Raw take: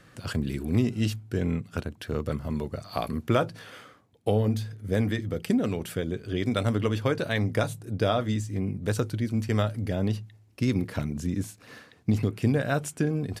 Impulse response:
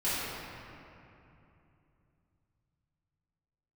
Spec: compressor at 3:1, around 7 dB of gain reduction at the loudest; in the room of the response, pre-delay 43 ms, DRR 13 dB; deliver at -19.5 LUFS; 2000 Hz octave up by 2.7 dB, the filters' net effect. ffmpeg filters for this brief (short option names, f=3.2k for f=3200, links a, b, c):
-filter_complex "[0:a]equalizer=f=2k:t=o:g=3.5,acompressor=threshold=-28dB:ratio=3,asplit=2[a][b];[1:a]atrim=start_sample=2205,adelay=43[c];[b][c]afir=irnorm=-1:irlink=0,volume=-23dB[d];[a][d]amix=inputs=2:normalize=0,volume=13.5dB"